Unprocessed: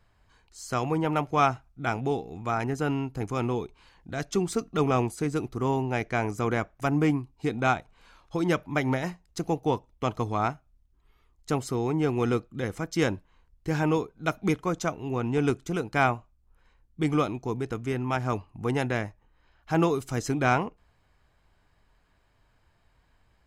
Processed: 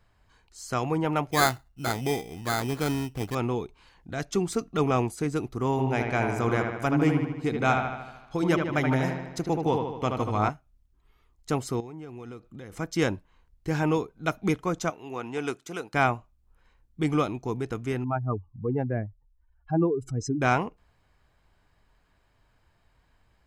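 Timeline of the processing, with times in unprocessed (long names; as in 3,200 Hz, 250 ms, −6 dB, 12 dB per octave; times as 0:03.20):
0:01.31–0:03.35: sample-rate reduction 2,800 Hz
0:05.71–0:10.49: delay with a low-pass on its return 76 ms, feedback 59%, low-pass 3,400 Hz, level −4.5 dB
0:11.80–0:12.72: downward compressor 5 to 1, threshold −39 dBFS
0:14.90–0:15.94: high-pass filter 620 Hz 6 dB per octave
0:18.04–0:20.42: expanding power law on the bin magnitudes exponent 2.3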